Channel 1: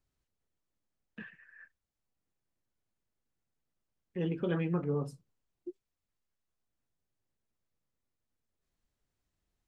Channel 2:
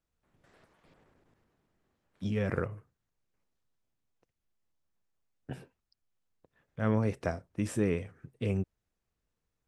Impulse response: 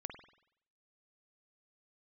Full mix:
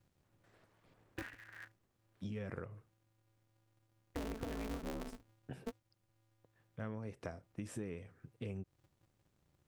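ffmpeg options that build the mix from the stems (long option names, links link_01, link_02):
-filter_complex "[0:a]lowshelf=frequency=190:gain=6,acompressor=threshold=-31dB:ratio=6,aeval=exprs='val(0)*sgn(sin(2*PI*110*n/s))':channel_layout=same,volume=2dB[link_01];[1:a]volume=-6dB[link_02];[link_01][link_02]amix=inputs=2:normalize=0,acompressor=threshold=-40dB:ratio=5"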